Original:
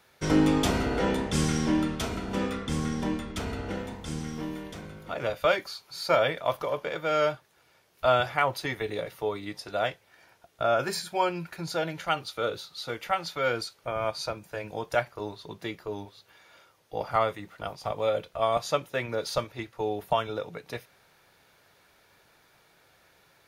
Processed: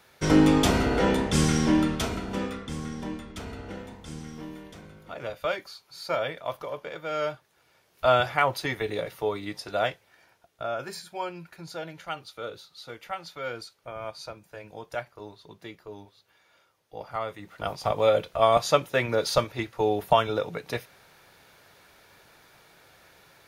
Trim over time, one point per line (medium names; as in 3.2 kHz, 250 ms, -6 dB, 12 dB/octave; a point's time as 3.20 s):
1.95 s +3.5 dB
2.75 s -5 dB
7.08 s -5 dB
8.13 s +2 dB
9.82 s +2 dB
10.73 s -7 dB
17.22 s -7 dB
17.71 s +5.5 dB